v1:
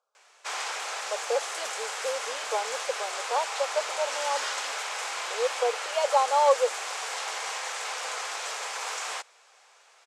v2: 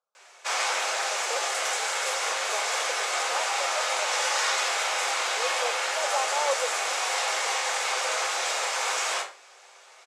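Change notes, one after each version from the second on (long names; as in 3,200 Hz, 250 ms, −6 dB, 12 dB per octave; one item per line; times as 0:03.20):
speech −8.0 dB
reverb: on, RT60 0.45 s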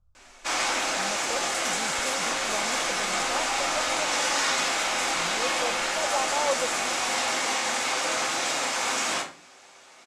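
background: add high-pass filter 180 Hz 12 dB per octave
master: remove elliptic high-pass filter 430 Hz, stop band 70 dB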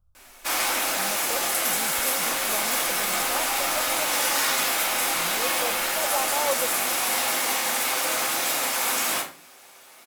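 master: remove Chebyshev low-pass filter 7,300 Hz, order 3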